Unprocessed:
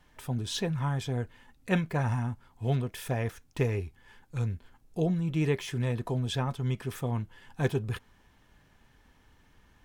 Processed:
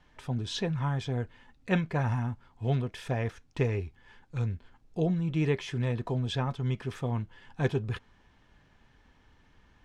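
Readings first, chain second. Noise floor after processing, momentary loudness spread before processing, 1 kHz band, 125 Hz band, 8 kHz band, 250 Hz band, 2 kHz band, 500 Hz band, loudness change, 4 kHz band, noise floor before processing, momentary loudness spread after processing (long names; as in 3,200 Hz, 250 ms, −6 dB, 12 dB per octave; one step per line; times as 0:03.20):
−63 dBFS, 9 LU, 0.0 dB, 0.0 dB, can't be measured, 0.0 dB, 0.0 dB, 0.0 dB, 0.0 dB, −0.5 dB, −63 dBFS, 9 LU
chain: low-pass filter 5,600 Hz 12 dB per octave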